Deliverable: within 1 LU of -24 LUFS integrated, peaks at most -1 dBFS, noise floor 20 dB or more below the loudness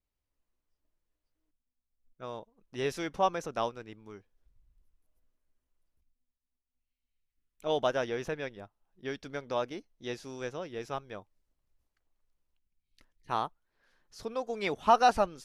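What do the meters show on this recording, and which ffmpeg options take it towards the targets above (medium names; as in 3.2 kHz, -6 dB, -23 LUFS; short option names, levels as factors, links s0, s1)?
loudness -32.5 LUFS; peak level -10.5 dBFS; loudness target -24.0 LUFS
-> -af "volume=2.66"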